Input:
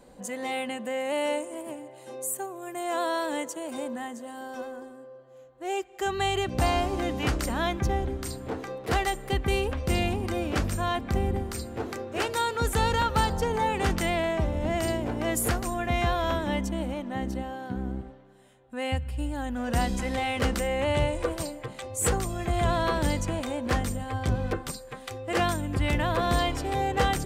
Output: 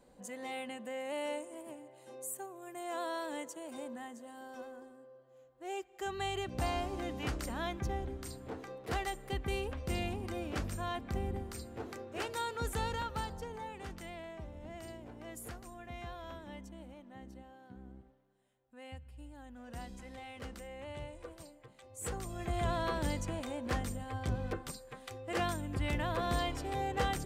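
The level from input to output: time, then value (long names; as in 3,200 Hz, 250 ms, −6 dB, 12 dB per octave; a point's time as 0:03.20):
0:12.70 −10 dB
0:13.84 −19.5 dB
0:21.80 −19.5 dB
0:22.42 −8.5 dB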